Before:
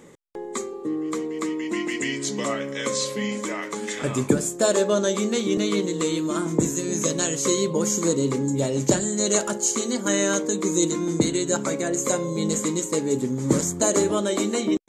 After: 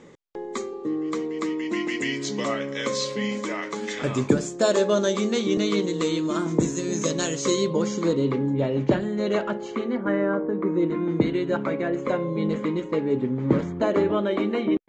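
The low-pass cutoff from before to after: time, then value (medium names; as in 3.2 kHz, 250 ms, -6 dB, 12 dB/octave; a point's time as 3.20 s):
low-pass 24 dB/octave
7.52 s 6 kHz
8.52 s 3 kHz
9.67 s 3 kHz
10.39 s 1.4 kHz
11.15 s 2.9 kHz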